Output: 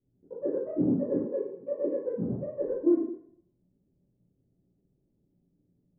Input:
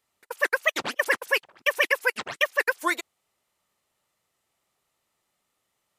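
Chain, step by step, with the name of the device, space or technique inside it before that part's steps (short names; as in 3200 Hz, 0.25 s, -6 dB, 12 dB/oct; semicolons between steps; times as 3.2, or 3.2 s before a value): next room (LPF 290 Hz 24 dB/oct; reverb RT60 0.65 s, pre-delay 11 ms, DRR -10.5 dB); 1.25–2.06 HPF 210 Hz 12 dB/oct; gain +8.5 dB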